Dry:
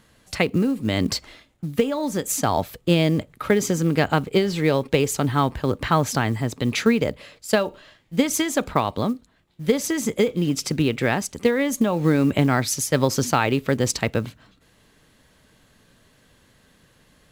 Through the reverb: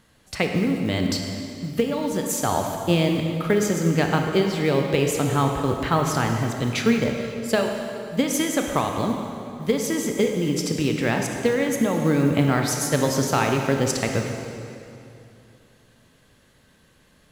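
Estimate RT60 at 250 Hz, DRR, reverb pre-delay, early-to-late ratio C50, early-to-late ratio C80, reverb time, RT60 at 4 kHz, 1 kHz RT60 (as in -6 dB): 3.0 s, 2.5 dB, 20 ms, 3.5 dB, 4.5 dB, 2.8 s, 2.3 s, 2.7 s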